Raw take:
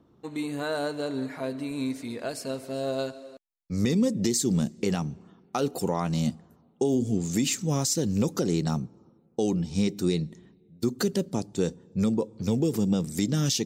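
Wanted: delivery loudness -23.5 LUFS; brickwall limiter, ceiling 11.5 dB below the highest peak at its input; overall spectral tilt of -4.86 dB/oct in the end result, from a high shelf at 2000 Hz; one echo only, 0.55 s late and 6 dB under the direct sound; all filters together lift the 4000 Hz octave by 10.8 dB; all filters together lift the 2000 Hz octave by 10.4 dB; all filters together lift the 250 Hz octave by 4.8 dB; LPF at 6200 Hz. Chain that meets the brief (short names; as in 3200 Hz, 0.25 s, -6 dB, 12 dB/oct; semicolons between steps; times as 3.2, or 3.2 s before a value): LPF 6200 Hz; bell 250 Hz +6 dB; high shelf 2000 Hz +4 dB; bell 2000 Hz +9 dB; bell 4000 Hz +8 dB; limiter -17 dBFS; echo 0.55 s -6 dB; gain +3.5 dB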